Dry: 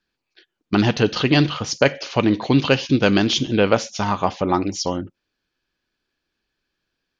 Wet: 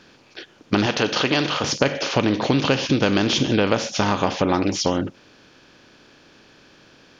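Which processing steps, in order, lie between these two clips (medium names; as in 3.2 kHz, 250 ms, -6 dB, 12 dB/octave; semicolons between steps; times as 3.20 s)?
spectral levelling over time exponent 0.6; 0.86–1.64 s: bass shelf 270 Hz -11 dB; compression 4:1, threshold -14 dBFS, peak gain reduction 6.5 dB; trim -1 dB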